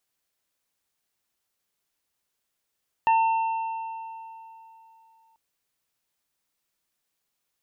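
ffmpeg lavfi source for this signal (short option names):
-f lavfi -i "aevalsrc='0.158*pow(10,-3*t/3.11)*sin(2*PI*900*t)+0.0224*pow(10,-3*t/0.23)*sin(2*PI*1800*t)+0.0355*pow(10,-3*t/2.48)*sin(2*PI*2700*t)':d=2.29:s=44100"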